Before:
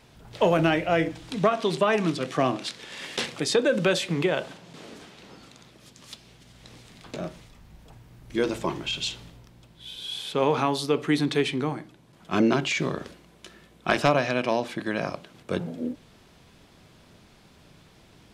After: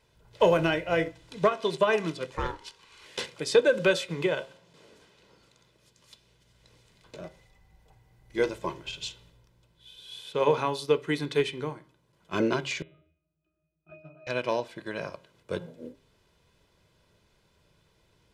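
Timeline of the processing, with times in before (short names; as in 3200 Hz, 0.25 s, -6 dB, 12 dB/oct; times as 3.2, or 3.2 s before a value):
2.3–3.06 ring modulator 620 Hz
7.24–8.5 small resonant body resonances 770/2000 Hz, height 16 dB, ringing for 95 ms
12.82–14.27 octave resonator D#, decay 0.37 s
whole clip: comb 2 ms, depth 49%; de-hum 134 Hz, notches 29; upward expander 1.5:1, over -39 dBFS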